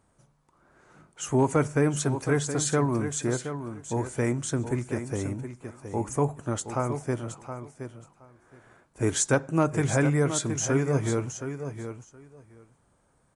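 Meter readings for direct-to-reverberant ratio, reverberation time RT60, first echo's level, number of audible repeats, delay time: no reverb, no reverb, -9.5 dB, 2, 720 ms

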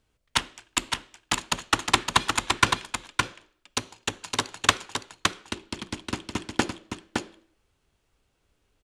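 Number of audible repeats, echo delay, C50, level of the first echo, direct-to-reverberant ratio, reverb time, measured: 1, 564 ms, no reverb, -4.5 dB, no reverb, no reverb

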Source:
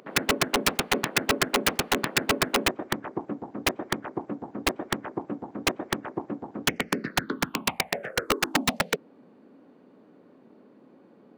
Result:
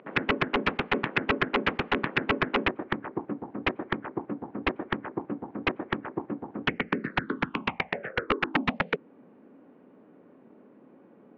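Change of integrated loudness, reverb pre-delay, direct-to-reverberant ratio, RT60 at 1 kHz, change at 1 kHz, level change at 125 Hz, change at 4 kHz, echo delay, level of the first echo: -2.0 dB, no reverb, no reverb, no reverb, -1.0 dB, 0.0 dB, -7.5 dB, no echo, no echo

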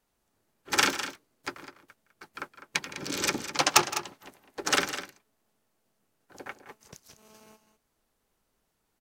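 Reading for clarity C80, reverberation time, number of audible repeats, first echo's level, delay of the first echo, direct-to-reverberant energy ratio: no reverb, no reverb, 2, -17.0 dB, 165 ms, no reverb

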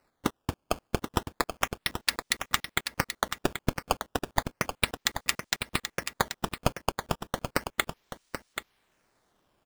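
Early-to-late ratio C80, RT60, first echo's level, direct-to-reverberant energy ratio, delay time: no reverb, no reverb, -8.5 dB, no reverb, 782 ms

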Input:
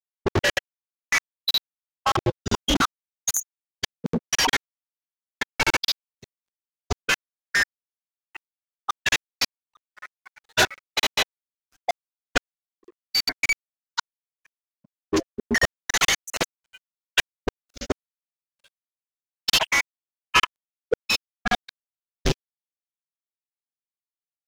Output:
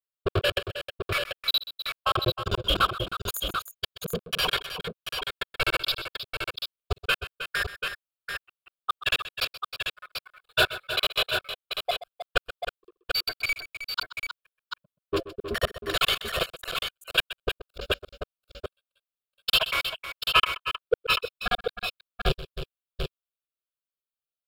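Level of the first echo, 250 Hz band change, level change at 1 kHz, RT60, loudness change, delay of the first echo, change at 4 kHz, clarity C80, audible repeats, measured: -15.0 dB, -8.5 dB, -2.0 dB, no reverb, -3.5 dB, 128 ms, -0.5 dB, no reverb, 3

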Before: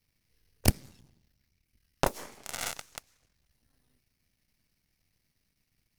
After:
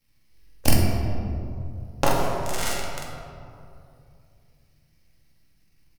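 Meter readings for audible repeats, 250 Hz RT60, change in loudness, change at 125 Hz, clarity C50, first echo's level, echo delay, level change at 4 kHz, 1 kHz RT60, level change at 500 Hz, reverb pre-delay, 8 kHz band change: 1, 2.9 s, +5.5 dB, +10.0 dB, 0.0 dB, -2.5 dB, 45 ms, +7.0 dB, 2.4 s, +9.5 dB, 4 ms, +5.5 dB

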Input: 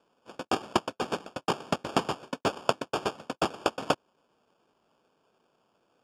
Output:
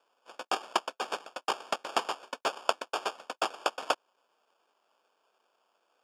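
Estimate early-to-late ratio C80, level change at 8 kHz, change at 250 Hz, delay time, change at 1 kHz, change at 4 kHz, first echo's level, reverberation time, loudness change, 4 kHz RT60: no reverb, 0.0 dB, -13.5 dB, no echo, -1.0 dB, 0.0 dB, no echo, no reverb, -2.0 dB, no reverb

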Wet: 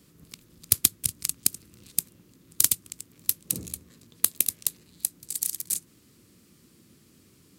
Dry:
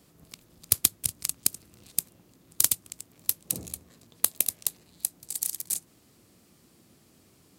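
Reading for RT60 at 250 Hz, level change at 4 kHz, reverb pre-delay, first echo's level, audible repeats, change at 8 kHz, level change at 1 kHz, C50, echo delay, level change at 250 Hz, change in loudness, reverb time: no reverb, +1.5 dB, no reverb, no echo, no echo, +1.5 dB, -2.5 dB, no reverb, no echo, +3.0 dB, +1.5 dB, no reverb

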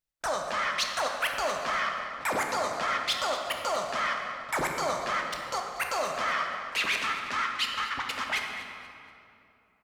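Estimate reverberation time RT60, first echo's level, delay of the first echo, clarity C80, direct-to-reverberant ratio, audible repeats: 2.7 s, -14.0 dB, 239 ms, 4.0 dB, 1.0 dB, 2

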